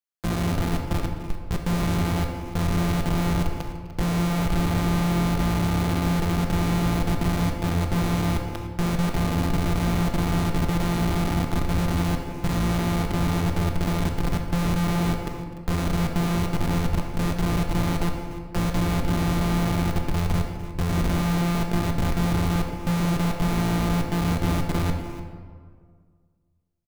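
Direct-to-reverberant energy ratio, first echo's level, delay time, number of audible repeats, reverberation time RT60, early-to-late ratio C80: 3.0 dB, −19.5 dB, 253 ms, 2, 1.9 s, 6.0 dB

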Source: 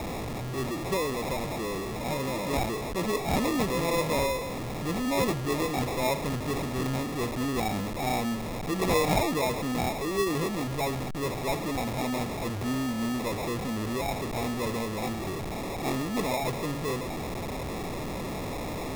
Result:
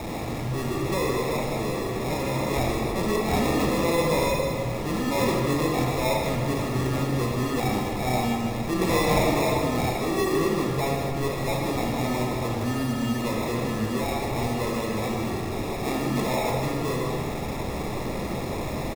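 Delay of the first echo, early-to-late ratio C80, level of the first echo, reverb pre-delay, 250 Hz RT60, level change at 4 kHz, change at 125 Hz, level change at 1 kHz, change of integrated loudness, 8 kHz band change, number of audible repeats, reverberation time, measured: 155 ms, 2.5 dB, −9.0 dB, 23 ms, 2.3 s, +2.5 dB, +5.5 dB, +3.5 dB, +4.0 dB, +2.0 dB, 1, 1.8 s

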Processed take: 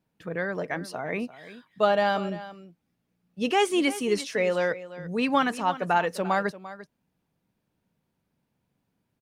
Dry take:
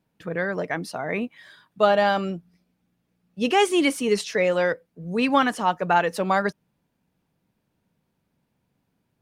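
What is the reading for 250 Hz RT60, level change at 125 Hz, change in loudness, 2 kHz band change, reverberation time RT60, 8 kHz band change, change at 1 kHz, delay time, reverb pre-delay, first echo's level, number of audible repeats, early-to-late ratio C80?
no reverb audible, −3.5 dB, −3.5 dB, −3.5 dB, no reverb audible, −3.5 dB, −3.5 dB, 345 ms, no reverb audible, −15.5 dB, 1, no reverb audible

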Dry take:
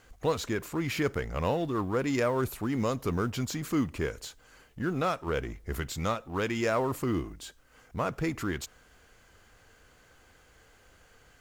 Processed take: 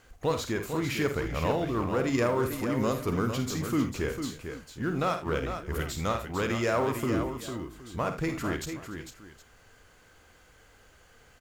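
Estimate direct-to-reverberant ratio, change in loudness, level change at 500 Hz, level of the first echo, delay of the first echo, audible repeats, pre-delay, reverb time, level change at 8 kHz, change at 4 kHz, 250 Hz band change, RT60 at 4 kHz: no reverb audible, +1.0 dB, +1.5 dB, −8.5 dB, 51 ms, 5, no reverb audible, no reverb audible, +1.5 dB, +1.5 dB, +1.5 dB, no reverb audible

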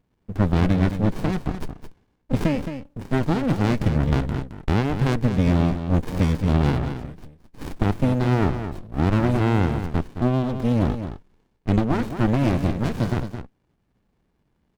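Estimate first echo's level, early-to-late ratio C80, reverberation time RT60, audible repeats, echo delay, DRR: −9.5 dB, no reverb audible, no reverb audible, 1, 217 ms, no reverb audible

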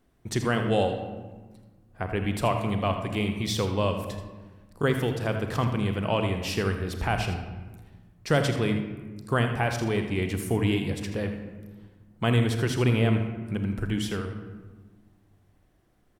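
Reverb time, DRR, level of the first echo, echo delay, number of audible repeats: 1.3 s, 5.0 dB, −11.5 dB, 81 ms, 1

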